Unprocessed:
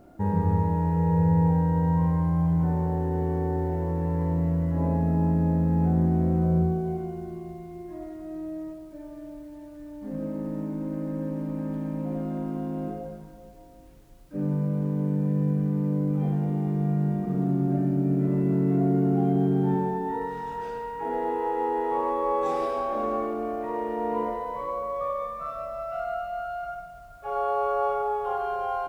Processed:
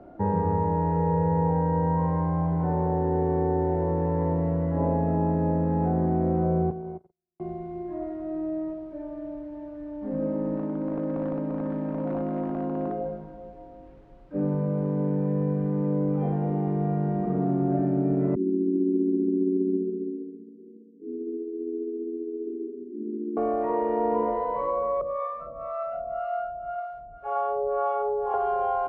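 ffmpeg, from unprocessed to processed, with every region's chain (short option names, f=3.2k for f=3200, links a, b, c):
-filter_complex "[0:a]asettb=1/sr,asplit=3[a][b][c];[a]atrim=end=6.704[d];[b]atrim=start=6.7:end=7.4,asetpts=PTS-STARTPTS,afade=t=in:d=0.004:c=qsin,afade=t=out:st=0.696:d=0.004:c=qsin,agate=range=-60dB:threshold=-28dB:ratio=16:release=100:detection=peak,acompressor=threshold=-35dB:ratio=4:attack=3.2:release=140:knee=1:detection=peak[e];[c]atrim=start=7.396[f];[d][e]acrossfade=d=0.004:c1=hsin:c2=qsin[g];[g][f]acrossfade=d=0.004:c1=qsin:c2=hsin,asettb=1/sr,asplit=3[h][i][j];[h]atrim=end=10.564[k];[i]atrim=start=10.56:end=12.98,asetpts=PTS-STARTPTS,afade=t=in:d=0.004:c=qsin,afade=t=out:st=2.416:d=0.004:c=qsin,lowshelf=f=150:g=-6.5,aeval=exprs='0.0501*(abs(mod(val(0)/0.0501+3,4)-2)-1)':c=same[l];[j]atrim=start=12.976[m];[k][l]acrossfade=d=0.004:c1=hsin:c2=qsin[n];[n][m]acrossfade=d=0.004:c1=qsin:c2=hsin,asettb=1/sr,asplit=3[o][p][q];[o]atrim=end=18.354[r];[p]atrim=start=18.35:end=23.37,asetpts=PTS-STARTPTS,afade=t=in:d=0.004:c=qsin,afade=t=out:st=5.016:d=0.004:c=qsin,asuperpass=centerf=280:order=20:qfactor=1.3,tremolo=f=15:d=0.29[s];[q]atrim=start=23.366[t];[r][s]acrossfade=d=0.004:c1=hsin:c2=qsin[u];[u][t]acrossfade=d=0.004:c1=qsin:c2=hsin,asettb=1/sr,asplit=3[v][w][x];[v]atrim=end=25.014[y];[w]atrim=start=25.01:end=28.34,asetpts=PTS-STARTPTS,afade=t=in:d=0.004:c=qsin,afade=t=out:st=3.326:d=0.004:c=qsin,acrossover=split=560[z][aa];[z]aeval=exprs='val(0)*(1-1/2+1/2*cos(2*PI*1.9*n/s))':c=same[ab];[aa]aeval=exprs='val(0)*(1-1/2-1/2*cos(2*PI*1.9*n/s))':c=same[ac];[ab][ac]amix=inputs=2:normalize=0,aecho=1:1:454:0.282,atrim=end_sample=146853[ad];[x]atrim=start=28.336[ae];[y][ad]acrossfade=d=0.004:c1=hsin:c2=qsin[af];[af][ae]acrossfade=d=0.004:c1=qsin:c2=hsin,lowpass=2.5k,equalizer=f=560:t=o:w=2.1:g=7,acrossover=split=90|300[ag][ah][ai];[ag]acompressor=threshold=-36dB:ratio=4[aj];[ah]acompressor=threshold=-27dB:ratio=4[ak];[ai]acompressor=threshold=-23dB:ratio=4[al];[aj][ak][al]amix=inputs=3:normalize=0"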